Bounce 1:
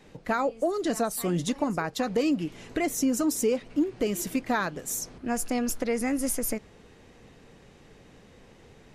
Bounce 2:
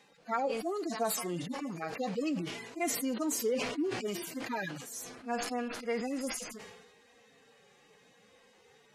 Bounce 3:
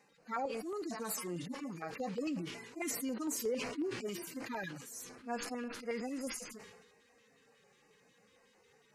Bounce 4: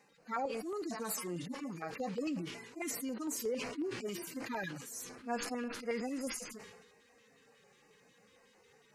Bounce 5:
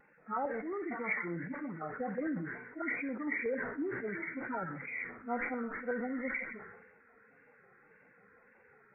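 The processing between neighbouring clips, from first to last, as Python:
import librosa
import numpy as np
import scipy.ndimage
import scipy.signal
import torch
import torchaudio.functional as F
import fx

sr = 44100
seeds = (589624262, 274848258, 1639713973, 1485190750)

y1 = fx.hpss_only(x, sr, part='harmonic')
y1 = fx.highpass(y1, sr, hz=750.0, slope=6)
y1 = fx.sustainer(y1, sr, db_per_s=47.0)
y2 = fx.filter_lfo_notch(y1, sr, shape='square', hz=5.5, low_hz=700.0, high_hz=3400.0, q=1.4)
y2 = y2 * 10.0 ** (-4.0 / 20.0)
y3 = fx.rider(y2, sr, range_db=10, speed_s=2.0)
y4 = fx.freq_compress(y3, sr, knee_hz=1300.0, ratio=4.0)
y4 = fx.wow_flutter(y4, sr, seeds[0], rate_hz=2.1, depth_cents=81.0)
y4 = fx.echo_feedback(y4, sr, ms=63, feedback_pct=37, wet_db=-15.0)
y4 = y4 * 10.0 ** (1.0 / 20.0)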